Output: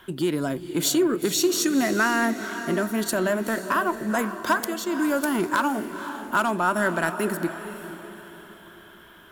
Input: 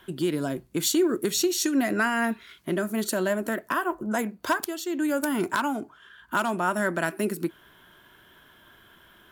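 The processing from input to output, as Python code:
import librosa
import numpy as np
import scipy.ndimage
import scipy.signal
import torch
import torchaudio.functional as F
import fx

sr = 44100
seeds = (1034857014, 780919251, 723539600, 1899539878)

p1 = fx.peak_eq(x, sr, hz=1200.0, db=3.0, octaves=0.77)
p2 = 10.0 ** (-26.5 / 20.0) * np.tanh(p1 / 10.0 ** (-26.5 / 20.0))
p3 = p1 + (p2 * librosa.db_to_amplitude(-8.5))
y = fx.echo_diffused(p3, sr, ms=486, feedback_pct=43, wet_db=-10.5)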